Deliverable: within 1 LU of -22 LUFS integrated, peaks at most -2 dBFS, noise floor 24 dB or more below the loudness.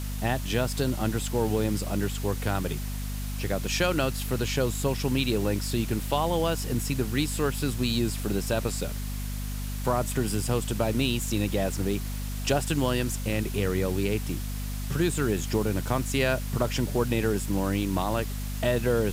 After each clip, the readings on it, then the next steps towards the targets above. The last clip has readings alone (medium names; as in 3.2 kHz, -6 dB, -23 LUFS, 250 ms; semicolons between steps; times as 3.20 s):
hum 50 Hz; highest harmonic 250 Hz; hum level -30 dBFS; noise floor -32 dBFS; noise floor target -52 dBFS; loudness -28.0 LUFS; peak level -11.0 dBFS; loudness target -22.0 LUFS
-> hum notches 50/100/150/200/250 Hz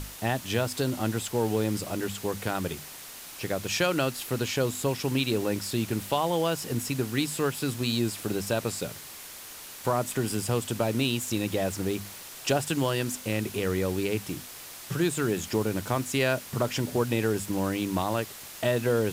hum not found; noise floor -44 dBFS; noise floor target -53 dBFS
-> noise reduction 9 dB, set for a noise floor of -44 dBFS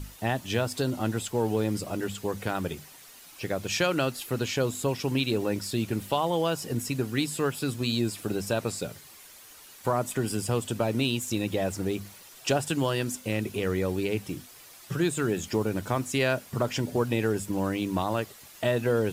noise floor -50 dBFS; noise floor target -53 dBFS
-> noise reduction 6 dB, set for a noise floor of -50 dBFS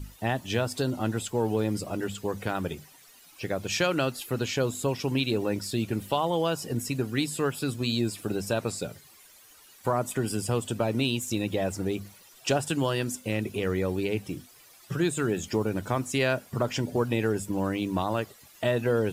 noise floor -54 dBFS; loudness -29.0 LUFS; peak level -12.0 dBFS; loudness target -22.0 LUFS
-> trim +7 dB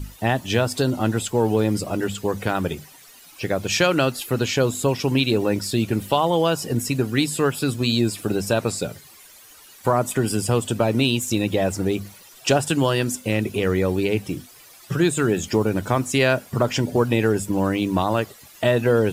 loudness -22.0 LUFS; peak level -5.0 dBFS; noise floor -47 dBFS